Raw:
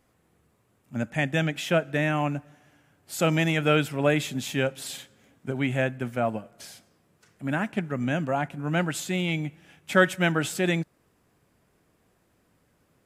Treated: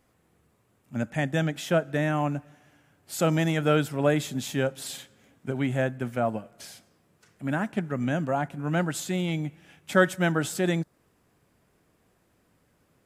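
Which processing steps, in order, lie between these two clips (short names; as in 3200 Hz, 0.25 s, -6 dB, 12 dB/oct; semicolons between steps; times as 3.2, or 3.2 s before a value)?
dynamic EQ 2500 Hz, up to -8 dB, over -44 dBFS, Q 1.8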